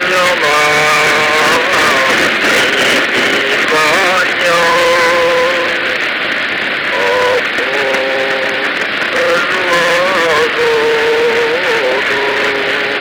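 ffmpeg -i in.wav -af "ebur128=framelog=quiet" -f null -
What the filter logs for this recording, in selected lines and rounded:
Integrated loudness:
  I:         -10.5 LUFS
  Threshold: -20.5 LUFS
Loudness range:
  LRA:         3.3 LU
  Threshold: -30.7 LUFS
  LRA low:   -12.4 LUFS
  LRA high:   -9.1 LUFS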